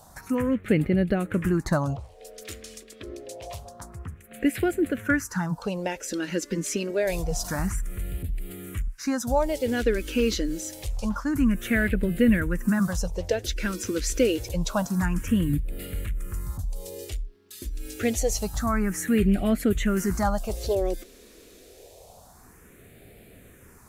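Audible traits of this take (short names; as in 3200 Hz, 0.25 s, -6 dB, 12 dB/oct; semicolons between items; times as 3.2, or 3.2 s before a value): phasing stages 4, 0.27 Hz, lowest notch 130–1000 Hz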